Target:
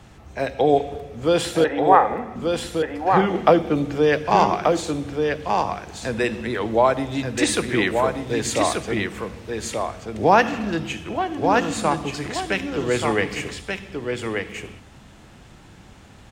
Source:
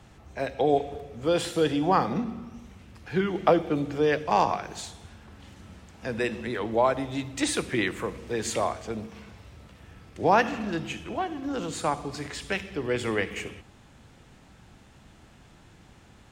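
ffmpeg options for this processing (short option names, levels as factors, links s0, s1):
-filter_complex "[0:a]asettb=1/sr,asplit=3[s0][s1][s2];[s0]atrim=end=1.644[s3];[s1]atrim=start=1.64:end=2.36,asetpts=PTS-STARTPTS,afade=t=in:d=0.004:c=qsin,afade=t=out:st=0.716:d=0.004:c=qsin,highpass=430,equalizer=f=540:t=q:w=4:g=6,equalizer=f=810:t=q:w=4:g=6,equalizer=f=1900:t=q:w=4:g=8,lowpass=f=2200:w=0.5412,lowpass=f=2200:w=1.3066[s4];[s2]atrim=start=2.356[s5];[s3][s4]acrossfade=d=0.004:c1=hsin:c2=qsin[s6];[s6][s5]acrossfade=d=0.004:c1=qsin:c2=hsin,asplit=2[s7][s8];[s8]aecho=0:1:1182:0.596[s9];[s7][s9]amix=inputs=2:normalize=0,volume=1.88"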